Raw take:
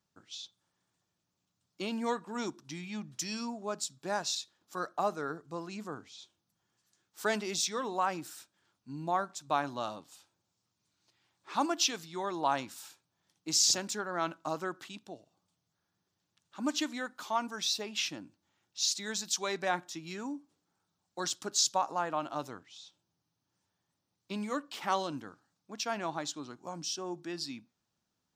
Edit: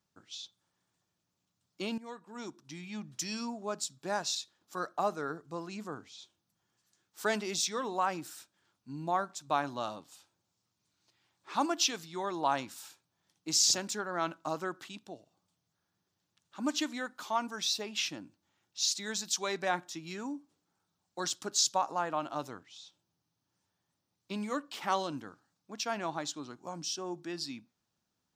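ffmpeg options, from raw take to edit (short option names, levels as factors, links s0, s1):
-filter_complex "[0:a]asplit=2[s0][s1];[s0]atrim=end=1.98,asetpts=PTS-STARTPTS,afade=t=out:st=1.976:d=0.004:c=hsin:silence=0.141254[s2];[s1]atrim=start=1.98,asetpts=PTS-STARTPTS,afade=t=in:d=1.19:silence=0.141254[s3];[s2][s3]concat=n=2:v=0:a=1"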